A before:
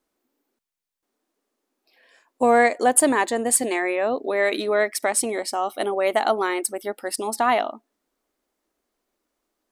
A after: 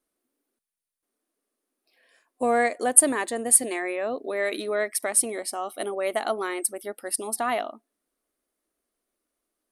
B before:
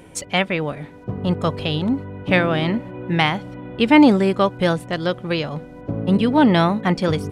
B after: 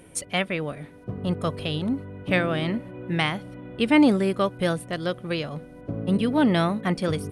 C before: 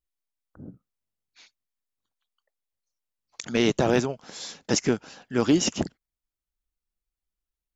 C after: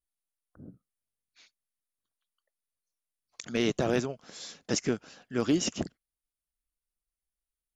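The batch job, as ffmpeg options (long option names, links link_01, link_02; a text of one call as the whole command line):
ffmpeg -i in.wav -af "superequalizer=9b=0.631:16b=2.82,volume=-5.5dB" out.wav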